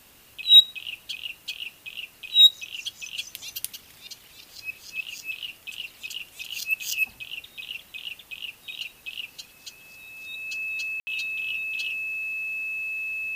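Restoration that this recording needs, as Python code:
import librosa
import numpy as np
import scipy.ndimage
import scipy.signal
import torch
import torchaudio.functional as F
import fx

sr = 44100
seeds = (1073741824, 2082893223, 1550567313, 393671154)

y = fx.notch(x, sr, hz=2600.0, q=30.0)
y = fx.fix_ambience(y, sr, seeds[0], print_start_s=9.42, print_end_s=9.92, start_s=11.0, end_s=11.07)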